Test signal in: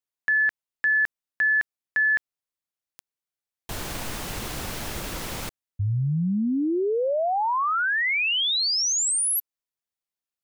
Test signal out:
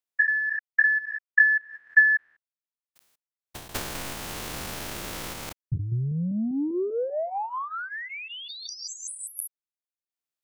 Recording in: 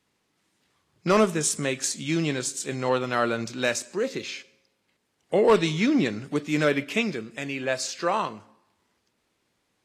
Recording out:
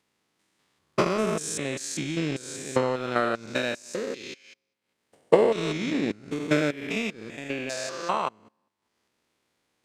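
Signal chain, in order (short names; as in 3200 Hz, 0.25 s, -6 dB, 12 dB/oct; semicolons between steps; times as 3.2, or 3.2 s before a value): stepped spectrum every 0.2 s; transient shaper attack +10 dB, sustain -11 dB; low shelf 170 Hz -5.5 dB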